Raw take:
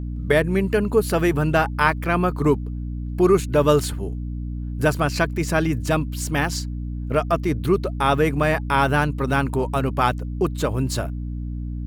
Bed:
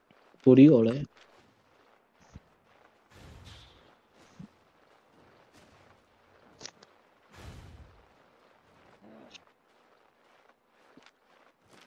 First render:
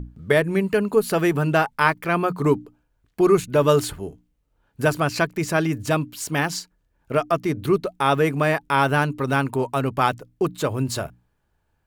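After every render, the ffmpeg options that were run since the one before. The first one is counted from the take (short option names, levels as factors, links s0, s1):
-af "bandreject=f=60:t=h:w=6,bandreject=f=120:t=h:w=6,bandreject=f=180:t=h:w=6,bandreject=f=240:t=h:w=6,bandreject=f=300:t=h:w=6"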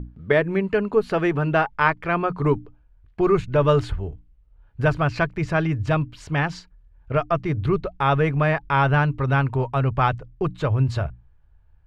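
-af "lowpass=2900,asubboost=boost=9.5:cutoff=82"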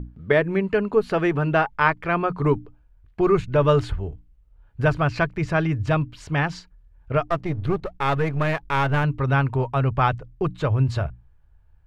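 -filter_complex "[0:a]asettb=1/sr,asplit=3[s0][s1][s2];[s0]atrim=end=7.274[s3];[s1]atrim=start=7.27:end=9.04,asetpts=PTS-STARTPTS,afade=t=in:d=0.004:c=qsin,afade=t=out:st=1.766:d=0.004:c=qsin,aeval=exprs='if(lt(val(0),0),0.447*val(0),val(0))':c=same[s4];[s2]atrim=start=9.036[s5];[s3][s4]acrossfade=d=0.004:c1=hsin:c2=qsin[s6];[s6][s5]acrossfade=d=0.004:c1=qsin:c2=hsin"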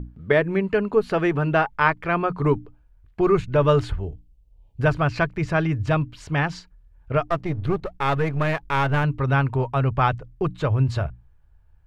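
-filter_complex "[0:a]asettb=1/sr,asplit=3[s0][s1][s2];[s0]atrim=end=4.054[s3];[s1]atrim=start=4.05:end=4.81,asetpts=PTS-STARTPTS,afade=t=in:d=0.004:c=qsin,afade=t=out:st=0.756:d=0.004:c=qsin,asuperstop=centerf=1500:order=4:qfactor=0.78[s4];[s2]atrim=start=4.806[s5];[s3][s4]acrossfade=d=0.004:c1=hsin:c2=qsin[s6];[s6][s5]acrossfade=d=0.004:c1=qsin:c2=hsin"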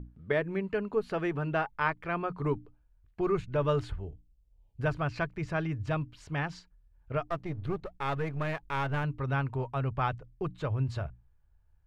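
-af "volume=0.316"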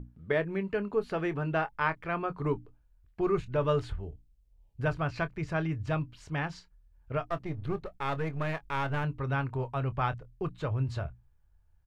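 -filter_complex "[0:a]asplit=2[s0][s1];[s1]adelay=25,volume=0.2[s2];[s0][s2]amix=inputs=2:normalize=0"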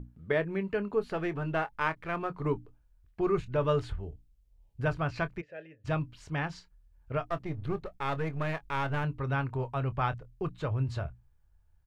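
-filter_complex "[0:a]asettb=1/sr,asplit=3[s0][s1][s2];[s0]atrim=end=1.084[s3];[s1]atrim=start=1.08:end=2.46,asetpts=PTS-STARTPTS,afade=t=in:d=0.004:c=qsin,afade=t=out:st=1.376:d=0.004:c=qsin,aeval=exprs='if(lt(val(0),0),0.708*val(0),val(0))':c=same[s4];[s2]atrim=start=2.456[s5];[s3][s4]acrossfade=d=0.004:c1=hsin:c2=qsin[s6];[s6][s5]acrossfade=d=0.004:c1=qsin:c2=hsin,asplit=3[s7][s8][s9];[s7]afade=t=out:st=5.4:d=0.02[s10];[s8]asplit=3[s11][s12][s13];[s11]bandpass=f=530:t=q:w=8,volume=1[s14];[s12]bandpass=f=1840:t=q:w=8,volume=0.501[s15];[s13]bandpass=f=2480:t=q:w=8,volume=0.355[s16];[s14][s15][s16]amix=inputs=3:normalize=0,afade=t=in:st=5.4:d=0.02,afade=t=out:st=5.84:d=0.02[s17];[s9]afade=t=in:st=5.84:d=0.02[s18];[s10][s17][s18]amix=inputs=3:normalize=0"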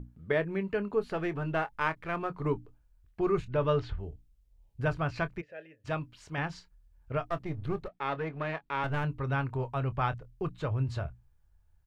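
-filter_complex "[0:a]asettb=1/sr,asplit=3[s0][s1][s2];[s0]atrim=end=3.484[s3];[s1]atrim=start=3.48:end=3.98,asetpts=PTS-STARTPTS,afade=t=in:d=0.004:c=qsin,afade=t=out:st=0.496:d=0.004:c=qsin,lowpass=f=5600:w=0.5412,lowpass=f=5600:w=1.3066[s4];[s2]atrim=start=3.976[s5];[s3][s4]acrossfade=d=0.004:c1=hsin:c2=qsin[s6];[s6][s5]acrossfade=d=0.004:c1=qsin:c2=hsin,asettb=1/sr,asplit=3[s7][s8][s9];[s7]atrim=end=5.524[s10];[s8]atrim=start=5.52:end=6.38,asetpts=PTS-STARTPTS,afade=t=in:d=0.004:c=qsin,afade=t=out:st=0.856:d=0.004:c=qsin,lowshelf=f=200:g=-8.5[s11];[s9]atrim=start=6.376[s12];[s10][s11]acrossfade=d=0.004:c1=hsin:c2=qsin[s13];[s13][s12]acrossfade=d=0.004:c1=qsin:c2=hsin,asettb=1/sr,asplit=3[s14][s15][s16];[s14]atrim=end=7.884[s17];[s15]atrim=start=7.88:end=8.84,asetpts=PTS-STARTPTS,afade=t=in:d=0.004:c=qsin,afade=t=out:st=0.956:d=0.004:c=qsin,acrossover=split=150 4600:gain=0.1 1 0.141[s18][s19][s20];[s18][s19][s20]amix=inputs=3:normalize=0[s21];[s16]atrim=start=8.836[s22];[s17][s21]acrossfade=d=0.004:c1=hsin:c2=qsin[s23];[s23][s22]acrossfade=d=0.004:c1=qsin:c2=hsin"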